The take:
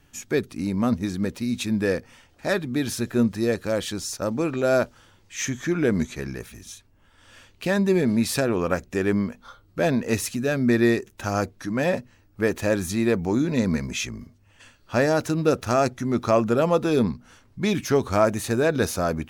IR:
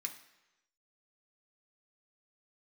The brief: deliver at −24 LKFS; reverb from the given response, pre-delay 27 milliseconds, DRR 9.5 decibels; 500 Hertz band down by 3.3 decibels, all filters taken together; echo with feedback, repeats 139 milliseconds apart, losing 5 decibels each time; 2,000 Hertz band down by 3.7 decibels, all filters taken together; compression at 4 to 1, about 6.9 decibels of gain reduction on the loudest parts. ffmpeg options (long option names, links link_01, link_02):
-filter_complex "[0:a]equalizer=frequency=500:width_type=o:gain=-4,equalizer=frequency=2000:width_type=o:gain=-4.5,acompressor=threshold=-25dB:ratio=4,aecho=1:1:139|278|417|556|695|834|973:0.562|0.315|0.176|0.0988|0.0553|0.031|0.0173,asplit=2[link_01][link_02];[1:a]atrim=start_sample=2205,adelay=27[link_03];[link_02][link_03]afir=irnorm=-1:irlink=0,volume=-8dB[link_04];[link_01][link_04]amix=inputs=2:normalize=0,volume=4.5dB"